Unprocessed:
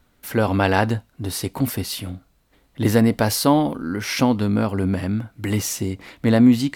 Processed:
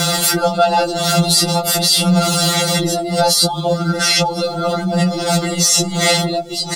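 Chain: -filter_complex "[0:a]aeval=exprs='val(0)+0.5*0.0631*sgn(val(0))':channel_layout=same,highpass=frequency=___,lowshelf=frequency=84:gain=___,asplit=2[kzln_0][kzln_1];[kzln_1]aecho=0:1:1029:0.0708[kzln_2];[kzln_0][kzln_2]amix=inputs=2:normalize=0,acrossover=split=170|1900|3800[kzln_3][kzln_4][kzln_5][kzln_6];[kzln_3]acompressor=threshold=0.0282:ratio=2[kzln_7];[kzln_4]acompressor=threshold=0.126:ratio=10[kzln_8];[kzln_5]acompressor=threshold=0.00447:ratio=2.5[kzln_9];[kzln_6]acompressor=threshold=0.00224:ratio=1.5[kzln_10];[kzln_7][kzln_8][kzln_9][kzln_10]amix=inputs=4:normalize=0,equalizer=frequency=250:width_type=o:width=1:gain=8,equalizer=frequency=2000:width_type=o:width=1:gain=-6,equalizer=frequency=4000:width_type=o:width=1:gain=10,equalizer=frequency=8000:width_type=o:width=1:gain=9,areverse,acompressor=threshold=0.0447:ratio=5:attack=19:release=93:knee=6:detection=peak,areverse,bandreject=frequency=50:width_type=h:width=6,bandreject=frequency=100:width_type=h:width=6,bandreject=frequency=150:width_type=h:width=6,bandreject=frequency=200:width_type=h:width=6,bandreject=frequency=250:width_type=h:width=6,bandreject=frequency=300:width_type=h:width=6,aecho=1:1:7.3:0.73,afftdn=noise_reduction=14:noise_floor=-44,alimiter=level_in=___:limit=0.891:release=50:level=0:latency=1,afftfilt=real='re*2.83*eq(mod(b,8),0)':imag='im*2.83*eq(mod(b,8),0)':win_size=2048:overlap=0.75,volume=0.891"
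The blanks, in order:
57, -10, 16.8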